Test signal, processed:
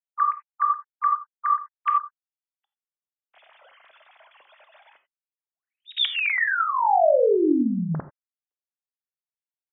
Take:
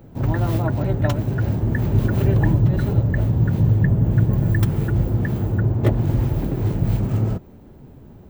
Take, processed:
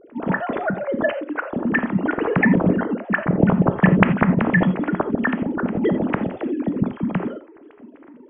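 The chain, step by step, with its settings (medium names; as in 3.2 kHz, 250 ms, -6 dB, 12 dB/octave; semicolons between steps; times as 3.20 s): formants replaced by sine waves; dynamic bell 2.3 kHz, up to +4 dB, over -27 dBFS, Q 0.87; gated-style reverb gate 110 ms flat, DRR 9 dB; trim -2.5 dB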